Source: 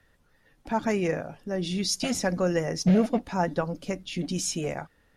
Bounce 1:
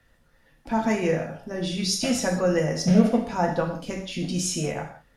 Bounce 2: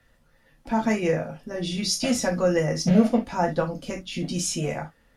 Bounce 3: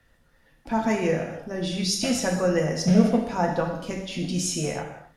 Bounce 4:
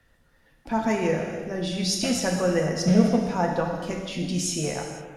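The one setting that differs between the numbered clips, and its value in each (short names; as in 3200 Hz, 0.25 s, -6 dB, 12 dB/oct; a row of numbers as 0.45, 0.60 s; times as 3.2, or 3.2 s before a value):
non-linear reverb, gate: 210, 90, 310, 530 ms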